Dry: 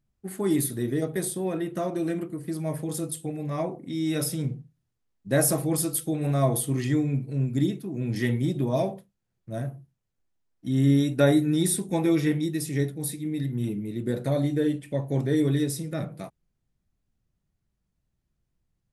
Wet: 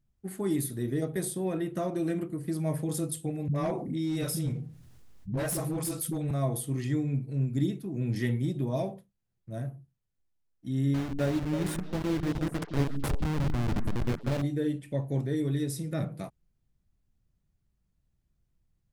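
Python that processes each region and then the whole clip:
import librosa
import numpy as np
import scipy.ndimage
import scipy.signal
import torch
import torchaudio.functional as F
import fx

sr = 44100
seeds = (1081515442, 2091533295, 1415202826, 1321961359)

y = fx.chain(x, sr, fx.dispersion(late='highs', ms=67.0, hz=330.0),
    fx.clip_hard(threshold_db=-21.5),
    fx.env_flatten(amount_pct=50), at=(3.48, 6.31))
y = fx.chain(y, sr, fx.delta_hold(step_db=-22.0),
    fx.high_shelf(hz=6300.0, db=-10.0),
    fx.echo_stepped(ms=161, hz=210.0, octaves=1.4, feedback_pct=70, wet_db=-5.5), at=(10.94, 14.42))
y = fx.rider(y, sr, range_db=4, speed_s=0.5)
y = fx.low_shelf(y, sr, hz=140.0, db=6.5)
y = y * librosa.db_to_amplitude(-6.0)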